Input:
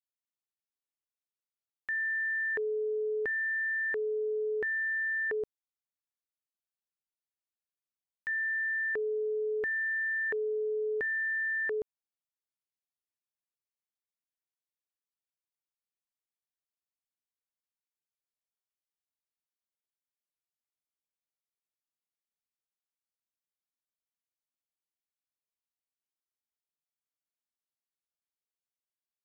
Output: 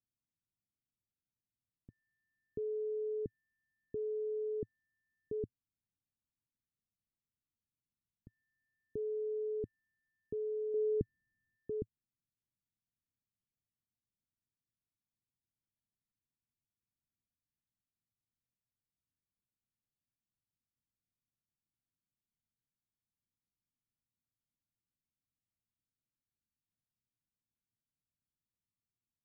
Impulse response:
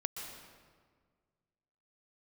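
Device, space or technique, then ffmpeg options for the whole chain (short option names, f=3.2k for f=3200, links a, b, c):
the neighbour's flat through the wall: -filter_complex "[0:a]lowpass=f=270:w=0.5412,lowpass=f=270:w=1.3066,equalizer=f=110:t=o:w=0.77:g=6.5,asettb=1/sr,asplit=3[a][b][c];[a]atrim=end=10.744[d];[b]atrim=start=10.74:end=11.56,asetpts=PTS-STARTPTS,afade=t=in:d=0.004:c=qsin,afade=t=out:st=0.816:d=0.004:c=qsin,lowshelf=f=420:g=10[e];[c]atrim=start=11.556[f];[d][e]acrossfade=d=0.004:c1=hsin:c2=qsin[g];[g][f]acrossfade=d=0.004:c1=qsin:c2=hsin,volume=10.5dB"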